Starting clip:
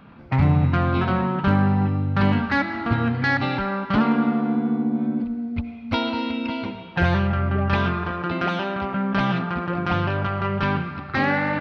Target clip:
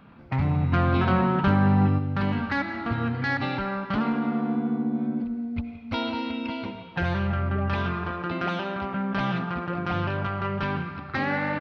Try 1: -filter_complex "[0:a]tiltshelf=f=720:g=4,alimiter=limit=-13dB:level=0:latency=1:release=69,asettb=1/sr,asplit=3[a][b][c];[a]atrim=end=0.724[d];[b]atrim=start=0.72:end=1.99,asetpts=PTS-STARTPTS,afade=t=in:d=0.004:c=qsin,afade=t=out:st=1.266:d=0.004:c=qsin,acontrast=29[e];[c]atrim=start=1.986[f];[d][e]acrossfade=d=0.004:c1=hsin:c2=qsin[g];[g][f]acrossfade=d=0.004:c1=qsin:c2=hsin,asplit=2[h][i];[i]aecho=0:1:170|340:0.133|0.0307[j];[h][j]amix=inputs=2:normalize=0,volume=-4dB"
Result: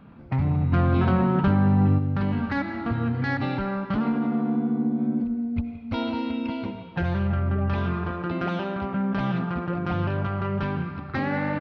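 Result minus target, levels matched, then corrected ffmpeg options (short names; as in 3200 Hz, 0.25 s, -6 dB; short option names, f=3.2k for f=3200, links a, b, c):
1000 Hz band -3.0 dB
-filter_complex "[0:a]alimiter=limit=-13dB:level=0:latency=1:release=69,asettb=1/sr,asplit=3[a][b][c];[a]atrim=end=0.724[d];[b]atrim=start=0.72:end=1.99,asetpts=PTS-STARTPTS,afade=t=in:d=0.004:c=qsin,afade=t=out:st=1.266:d=0.004:c=qsin,acontrast=29[e];[c]atrim=start=1.986[f];[d][e]acrossfade=d=0.004:c1=hsin:c2=qsin[g];[g][f]acrossfade=d=0.004:c1=qsin:c2=hsin,asplit=2[h][i];[i]aecho=0:1:170|340:0.133|0.0307[j];[h][j]amix=inputs=2:normalize=0,volume=-4dB"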